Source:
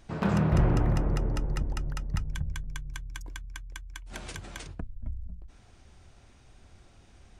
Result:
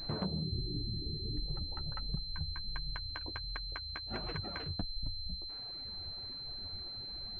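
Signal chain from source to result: treble ducked by the level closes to 560 Hz, closed at -24 dBFS; reverb removal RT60 1.4 s; spectral gain 0.42–1.46, 450–1600 Hz -23 dB; compressor 10:1, threshold -41 dBFS, peak gain reduction 21.5 dB; flange 1.4 Hz, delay 5.4 ms, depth 8.3 ms, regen -20%; pulse-width modulation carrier 4100 Hz; gain +10.5 dB

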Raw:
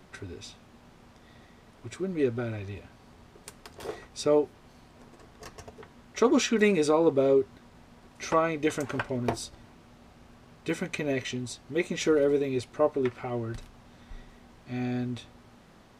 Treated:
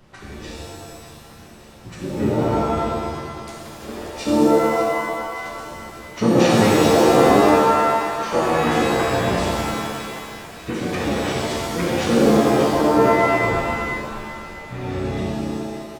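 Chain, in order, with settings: harmoniser -12 st -1 dB, -5 st -1 dB; split-band echo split 490 Hz, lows 99 ms, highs 0.583 s, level -10 dB; shimmer reverb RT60 1.7 s, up +7 st, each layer -2 dB, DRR -4.5 dB; gain -4 dB

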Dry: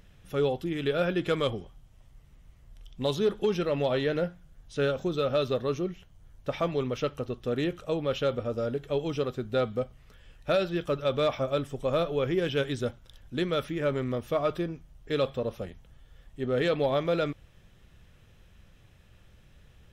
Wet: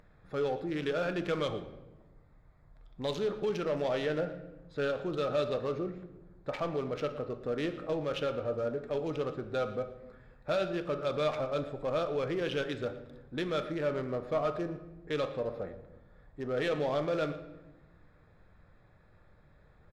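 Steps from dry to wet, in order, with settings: Wiener smoothing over 15 samples; in parallel at +2 dB: limiter -29 dBFS, peak gain reduction 11.5 dB; on the sum: echo 0.116 s -20 dB; overdrive pedal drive 10 dB, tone 5600 Hz, clips at -14.5 dBFS; shoebox room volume 560 m³, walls mixed, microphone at 0.49 m; gain -8.5 dB

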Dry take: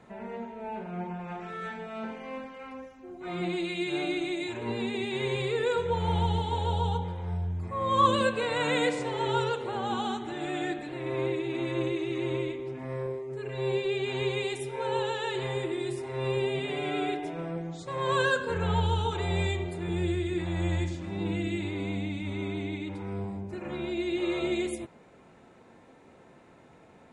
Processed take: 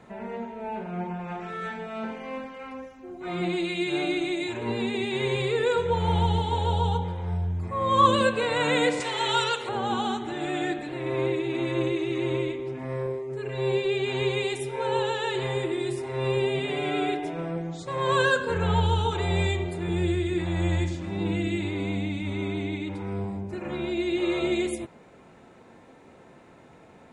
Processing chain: 9–9.69 tilt shelf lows -9 dB, about 930 Hz; gain +3.5 dB

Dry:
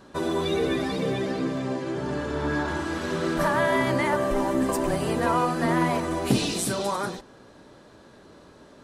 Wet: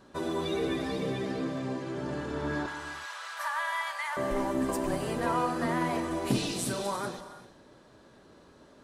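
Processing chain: 2.66–4.17 inverse Chebyshev high-pass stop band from 340 Hz, stop band 50 dB; non-linear reverb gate 0.41 s flat, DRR 10 dB; gain -6 dB

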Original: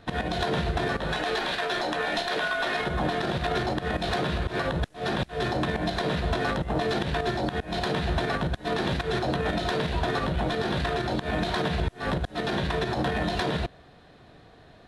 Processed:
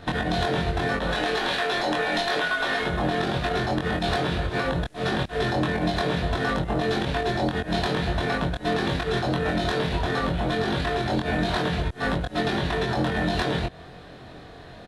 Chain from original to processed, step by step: compressor, threshold -31 dBFS, peak gain reduction 9 dB; doubler 23 ms -2.5 dB; gain +7 dB

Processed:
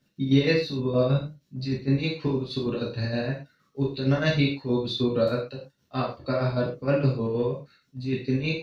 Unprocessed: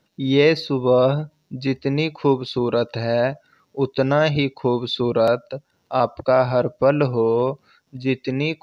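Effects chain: bell 840 Hz -10.5 dB 1.1 oct; chopper 6.4 Hz, depth 65%, duty 50%; reverb, pre-delay 3 ms, DRR -5.5 dB; gain -8 dB

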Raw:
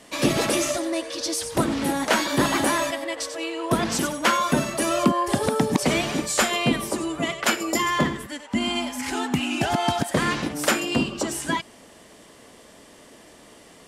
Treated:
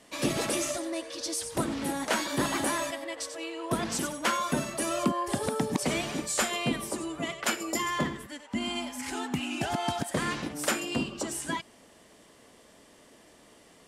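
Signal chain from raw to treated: dynamic EQ 8800 Hz, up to +4 dB, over -40 dBFS, Q 1.4; gain -7.5 dB

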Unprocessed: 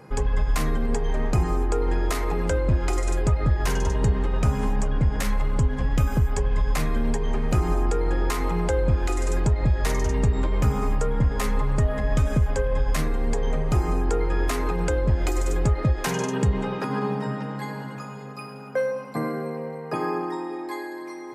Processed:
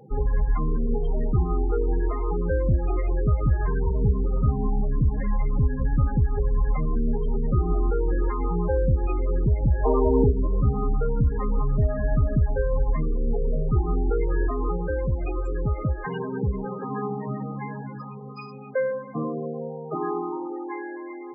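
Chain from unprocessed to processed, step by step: 9.84–10.31 spectral gain 230–1200 Hz +10 dB; 14.77–17.3 low shelf 450 Hz -4 dB; loudest bins only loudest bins 16

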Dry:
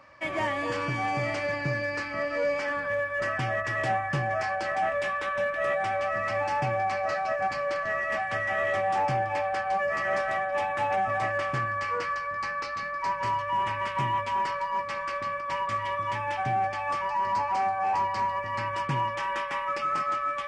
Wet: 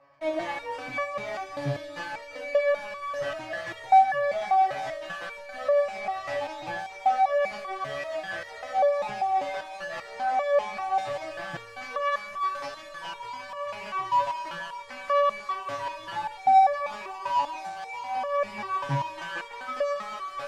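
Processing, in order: bell 710 Hz +11.5 dB 0.67 oct; in parallel at -11 dB: fuzz box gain 36 dB, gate -41 dBFS; on the sum: air absorption 57 m; stepped resonator 5.1 Hz 140–570 Hz; gain +2 dB

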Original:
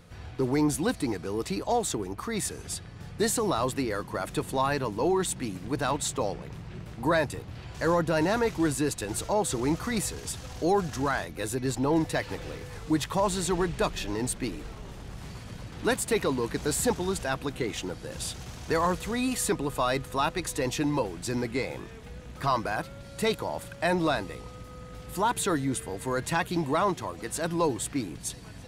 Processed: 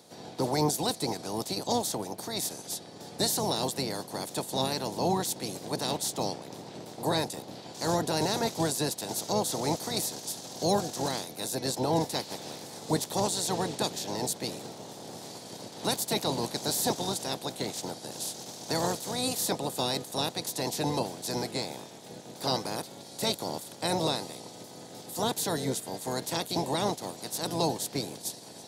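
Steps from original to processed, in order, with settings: spectral limiter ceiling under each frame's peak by 20 dB; HPF 120 Hz 24 dB/oct; band shelf 1800 Hz -12.5 dB

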